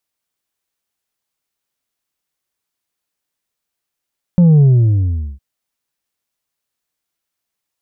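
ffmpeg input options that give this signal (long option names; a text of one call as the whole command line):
ffmpeg -f lavfi -i "aevalsrc='0.501*clip((1.01-t)/0.78,0,1)*tanh(1.5*sin(2*PI*180*1.01/log(65/180)*(exp(log(65/180)*t/1.01)-1)))/tanh(1.5)':duration=1.01:sample_rate=44100" out.wav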